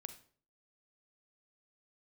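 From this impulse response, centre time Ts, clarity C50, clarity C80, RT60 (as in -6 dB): 8 ms, 11.0 dB, 15.5 dB, 0.50 s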